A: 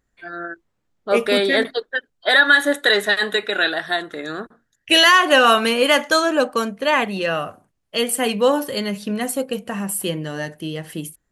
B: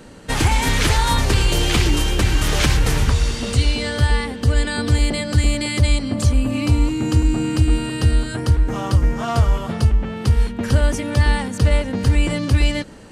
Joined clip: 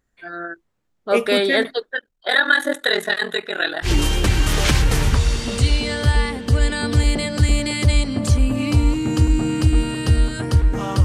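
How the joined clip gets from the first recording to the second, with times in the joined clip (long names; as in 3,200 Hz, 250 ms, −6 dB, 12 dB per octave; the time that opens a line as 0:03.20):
A
0:01.95–0:03.90: ring modulation 21 Hz
0:03.86: continue with B from 0:01.81, crossfade 0.08 s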